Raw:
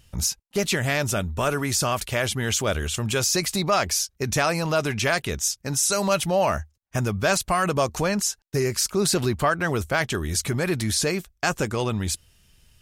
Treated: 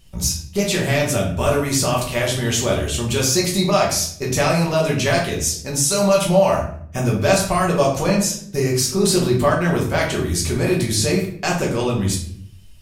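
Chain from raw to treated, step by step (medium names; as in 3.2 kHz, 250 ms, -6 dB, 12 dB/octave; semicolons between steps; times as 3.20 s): peaking EQ 1.5 kHz -4 dB 0.77 oct; simulated room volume 95 m³, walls mixed, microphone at 1.1 m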